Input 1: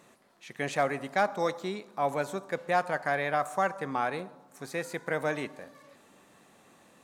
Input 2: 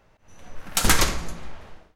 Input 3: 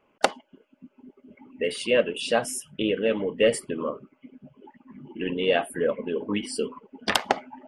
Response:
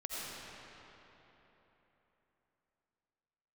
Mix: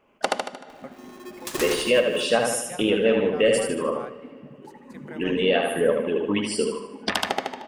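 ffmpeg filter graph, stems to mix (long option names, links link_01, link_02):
-filter_complex "[0:a]volume=-11.5dB,asplit=3[link_01][link_02][link_03];[link_02]volume=-23dB[link_04];[link_03]volume=-22dB[link_05];[1:a]acompressor=mode=upward:threshold=-30dB:ratio=2.5,aeval=exprs='val(0)*sgn(sin(2*PI*360*n/s))':channel_layout=same,adelay=700,volume=-12dB,asplit=2[link_06][link_07];[link_07]volume=-7.5dB[link_08];[2:a]volume=2.5dB,asplit=4[link_09][link_10][link_11][link_12];[link_10]volume=-20dB[link_13];[link_11]volume=-4dB[link_14];[link_12]apad=whole_len=310445[link_15];[link_01][link_15]sidechaingate=range=-33dB:threshold=-44dB:ratio=16:detection=peak[link_16];[3:a]atrim=start_sample=2205[link_17];[link_04][link_13]amix=inputs=2:normalize=0[link_18];[link_18][link_17]afir=irnorm=-1:irlink=0[link_19];[link_05][link_08][link_14]amix=inputs=3:normalize=0,aecho=0:1:76|152|228|304|380|456:1|0.46|0.212|0.0973|0.0448|0.0206[link_20];[link_16][link_06][link_09][link_19][link_20]amix=inputs=5:normalize=0,alimiter=limit=-9.5dB:level=0:latency=1:release=170"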